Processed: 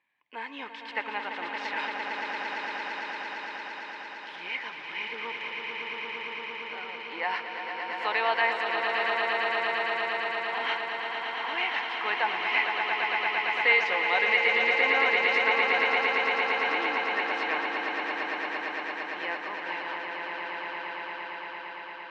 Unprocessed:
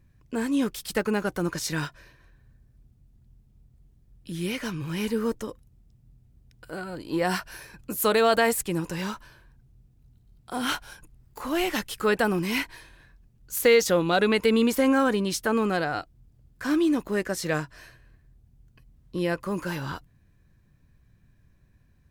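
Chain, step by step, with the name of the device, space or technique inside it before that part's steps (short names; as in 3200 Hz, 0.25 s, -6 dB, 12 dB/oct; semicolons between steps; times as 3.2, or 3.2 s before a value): 1.78–4.36 RIAA curve recording; HPF 1400 Hz 6 dB/oct; phone earpiece (speaker cabinet 400–3200 Hz, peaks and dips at 400 Hz -5 dB, 580 Hz -4 dB, 890 Hz +10 dB, 1400 Hz -7 dB, 2100 Hz +8 dB, 3100 Hz +4 dB); dynamic EQ 3300 Hz, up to -7 dB, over -52 dBFS, Q 5.7; swelling echo 0.114 s, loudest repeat 8, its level -6.5 dB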